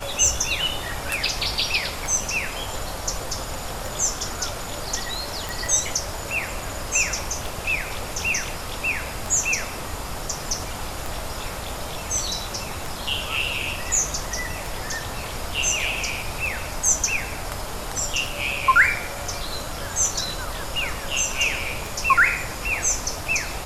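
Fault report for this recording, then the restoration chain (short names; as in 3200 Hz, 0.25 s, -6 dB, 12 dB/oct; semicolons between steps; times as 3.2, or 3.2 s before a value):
tick 33 1/3 rpm
5.49 pop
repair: de-click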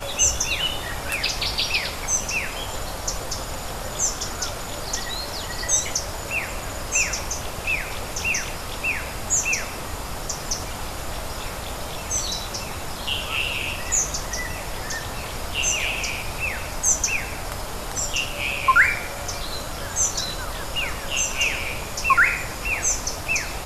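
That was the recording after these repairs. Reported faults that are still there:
none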